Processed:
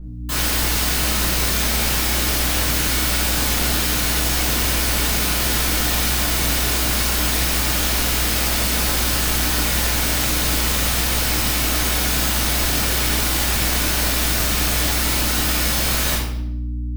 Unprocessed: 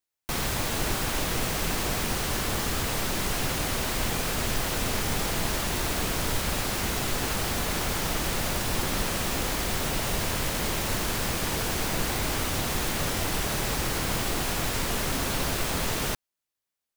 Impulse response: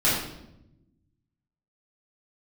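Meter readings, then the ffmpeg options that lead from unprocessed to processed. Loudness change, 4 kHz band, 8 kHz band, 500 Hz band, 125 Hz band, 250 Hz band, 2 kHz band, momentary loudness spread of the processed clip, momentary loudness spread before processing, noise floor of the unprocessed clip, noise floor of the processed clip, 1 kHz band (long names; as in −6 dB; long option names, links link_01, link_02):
+9.5 dB, +10.0 dB, +10.0 dB, +3.5 dB, +8.0 dB, +6.0 dB, +8.0 dB, 0 LU, 0 LU, below −85 dBFS, −24 dBFS, +5.0 dB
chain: -filter_complex "[0:a]aeval=exprs='(mod(22.4*val(0)+1,2)-1)/22.4':channel_layout=same,aeval=exprs='val(0)+0.00708*(sin(2*PI*60*n/s)+sin(2*PI*2*60*n/s)/2+sin(2*PI*3*60*n/s)/3+sin(2*PI*4*60*n/s)/4+sin(2*PI*5*60*n/s)/5)':channel_layout=same[link_01];[1:a]atrim=start_sample=2205[link_02];[link_01][link_02]afir=irnorm=-1:irlink=0,volume=-2.5dB"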